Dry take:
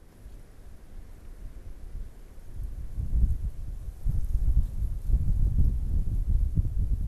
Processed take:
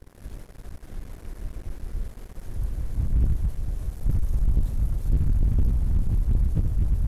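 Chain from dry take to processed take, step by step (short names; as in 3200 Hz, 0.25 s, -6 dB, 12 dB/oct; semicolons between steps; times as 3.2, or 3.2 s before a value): sample leveller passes 3; gain -3.5 dB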